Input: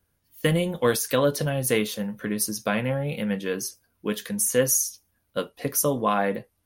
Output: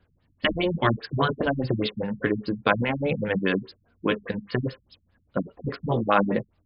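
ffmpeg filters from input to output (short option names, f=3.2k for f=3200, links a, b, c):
-af "afftfilt=real='re*lt(hypot(re,im),0.355)':imag='im*lt(hypot(re,im),0.355)':win_size=1024:overlap=0.75,afftfilt=real='re*lt(b*sr/1024,210*pow(5300/210,0.5+0.5*sin(2*PI*4.9*pts/sr)))':imag='im*lt(b*sr/1024,210*pow(5300/210,0.5+0.5*sin(2*PI*4.9*pts/sr)))':win_size=1024:overlap=0.75,volume=8dB"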